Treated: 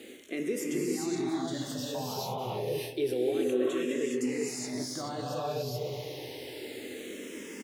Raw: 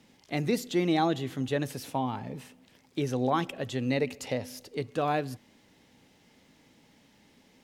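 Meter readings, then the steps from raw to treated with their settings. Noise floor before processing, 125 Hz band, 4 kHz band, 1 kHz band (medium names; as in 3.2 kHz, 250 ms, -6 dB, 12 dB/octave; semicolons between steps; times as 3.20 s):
-62 dBFS, -6.0 dB, +0.5 dB, -6.5 dB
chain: peak limiter -25.5 dBFS, peak gain reduction 12 dB; high-pass 110 Hz; treble shelf 2 kHz +11.5 dB; doubling 24 ms -12 dB; on a send: feedback echo behind a low-pass 252 ms, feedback 37%, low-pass 570 Hz, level -12 dB; on the sum: gated-style reverb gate 440 ms rising, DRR -5 dB; reverse; compression 6:1, threshold -41 dBFS, peak gain reduction 18.5 dB; reverse; peaking EQ 400 Hz +14.5 dB 1.1 oct; barber-pole phaser -0.29 Hz; trim +6.5 dB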